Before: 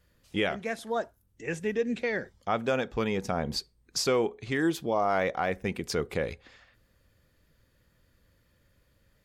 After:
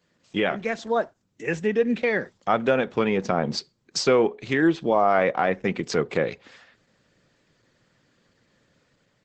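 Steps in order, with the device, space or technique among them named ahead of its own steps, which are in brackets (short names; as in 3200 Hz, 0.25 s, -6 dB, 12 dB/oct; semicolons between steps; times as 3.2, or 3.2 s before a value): treble ducked by the level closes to 3000 Hz, closed at -24 dBFS; video call (HPF 130 Hz 24 dB/oct; AGC gain up to 3.5 dB; gain +3.5 dB; Opus 12 kbps 48000 Hz)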